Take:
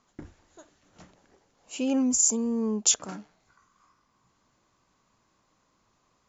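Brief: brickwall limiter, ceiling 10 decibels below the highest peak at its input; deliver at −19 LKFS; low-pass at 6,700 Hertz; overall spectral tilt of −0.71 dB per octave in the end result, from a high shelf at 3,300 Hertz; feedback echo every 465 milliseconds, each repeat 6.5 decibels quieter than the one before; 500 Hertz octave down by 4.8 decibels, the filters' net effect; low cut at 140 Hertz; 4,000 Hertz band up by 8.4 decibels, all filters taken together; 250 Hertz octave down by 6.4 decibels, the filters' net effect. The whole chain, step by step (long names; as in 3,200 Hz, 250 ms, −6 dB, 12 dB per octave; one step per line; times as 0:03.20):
high-pass filter 140 Hz
low-pass filter 6,700 Hz
parametric band 250 Hz −5.5 dB
parametric band 500 Hz −4 dB
high-shelf EQ 3,300 Hz +4 dB
parametric band 4,000 Hz +9 dB
brickwall limiter −12.5 dBFS
repeating echo 465 ms, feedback 47%, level −6.5 dB
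level +8.5 dB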